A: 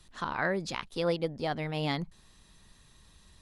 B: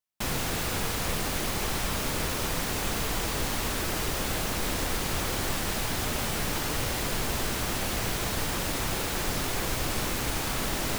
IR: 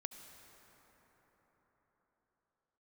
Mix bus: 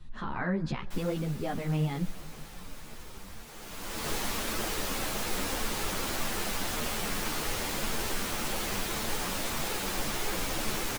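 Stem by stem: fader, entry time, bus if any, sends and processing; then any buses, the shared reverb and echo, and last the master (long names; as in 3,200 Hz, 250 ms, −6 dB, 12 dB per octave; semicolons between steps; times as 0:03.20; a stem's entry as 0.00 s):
+2.0 dB, 0.00 s, send −7.5 dB, bass and treble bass +15 dB, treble −13 dB; brickwall limiter −23.5 dBFS, peak gain reduction 9.5 dB
0.0 dB, 0.70 s, send −17 dB, automatic ducking −22 dB, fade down 1.30 s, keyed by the first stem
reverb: on, RT60 5.0 s, pre-delay 63 ms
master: parametric band 76 Hz −8 dB 1.5 octaves; string-ensemble chorus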